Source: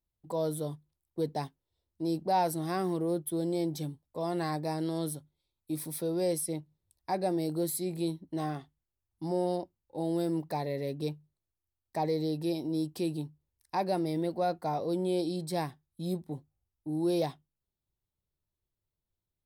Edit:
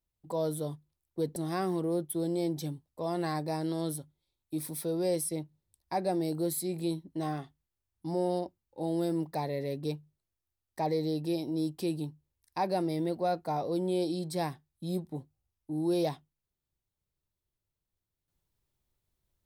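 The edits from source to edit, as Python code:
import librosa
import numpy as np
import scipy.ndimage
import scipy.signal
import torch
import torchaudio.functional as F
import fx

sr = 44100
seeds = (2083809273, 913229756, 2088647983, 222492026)

y = fx.edit(x, sr, fx.cut(start_s=1.36, length_s=1.17), tone=tone)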